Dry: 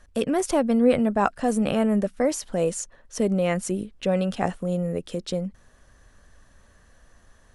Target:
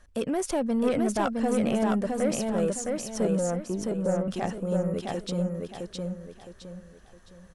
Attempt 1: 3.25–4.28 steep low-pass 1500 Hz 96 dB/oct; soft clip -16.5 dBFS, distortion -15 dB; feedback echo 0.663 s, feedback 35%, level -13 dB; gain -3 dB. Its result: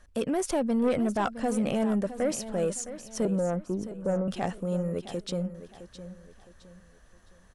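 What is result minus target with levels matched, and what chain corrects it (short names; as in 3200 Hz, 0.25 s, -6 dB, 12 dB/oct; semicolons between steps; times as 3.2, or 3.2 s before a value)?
echo-to-direct -10 dB
3.25–4.28 steep low-pass 1500 Hz 96 dB/oct; soft clip -16.5 dBFS, distortion -15 dB; feedback echo 0.663 s, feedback 35%, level -3 dB; gain -3 dB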